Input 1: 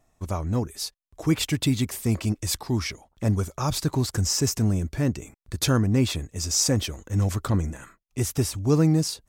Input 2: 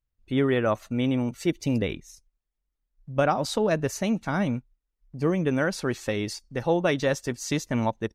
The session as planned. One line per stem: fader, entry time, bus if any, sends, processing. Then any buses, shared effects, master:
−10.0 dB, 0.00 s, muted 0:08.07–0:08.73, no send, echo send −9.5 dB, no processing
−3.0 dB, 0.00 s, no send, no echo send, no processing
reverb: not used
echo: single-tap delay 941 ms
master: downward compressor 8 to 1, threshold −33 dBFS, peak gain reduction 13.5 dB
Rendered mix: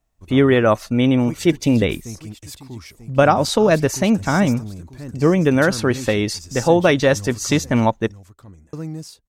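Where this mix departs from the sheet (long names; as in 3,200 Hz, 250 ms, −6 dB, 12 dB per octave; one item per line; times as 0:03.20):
stem 2 −3.0 dB → +9.0 dB
master: missing downward compressor 8 to 1, threshold −33 dBFS, peak gain reduction 13.5 dB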